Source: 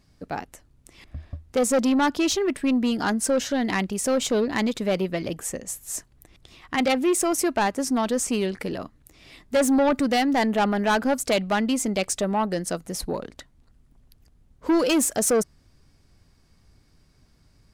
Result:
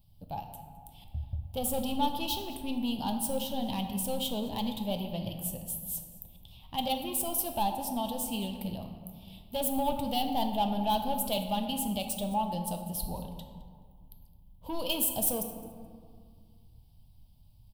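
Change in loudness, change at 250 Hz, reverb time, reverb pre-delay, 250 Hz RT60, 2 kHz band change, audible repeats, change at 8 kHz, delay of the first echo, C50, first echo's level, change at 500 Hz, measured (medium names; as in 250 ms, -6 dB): -8.5 dB, -10.5 dB, 2.1 s, 3 ms, 2.6 s, -18.0 dB, 1, -8.0 dB, 213 ms, 6.0 dB, -19.0 dB, -12.0 dB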